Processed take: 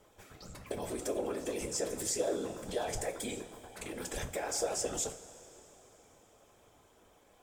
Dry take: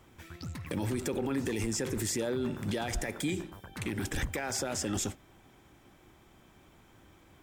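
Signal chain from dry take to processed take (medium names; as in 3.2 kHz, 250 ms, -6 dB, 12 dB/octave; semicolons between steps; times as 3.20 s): graphic EQ 125/250/500/2000/8000 Hz -9/-11/+11/-4/+5 dB; whisper effect; reverberation, pre-delay 3 ms, DRR 5 dB; trim -5 dB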